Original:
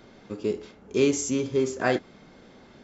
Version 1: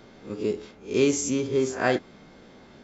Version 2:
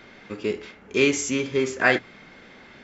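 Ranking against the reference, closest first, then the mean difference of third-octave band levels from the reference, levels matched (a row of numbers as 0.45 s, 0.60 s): 1, 2; 1.0 dB, 2.5 dB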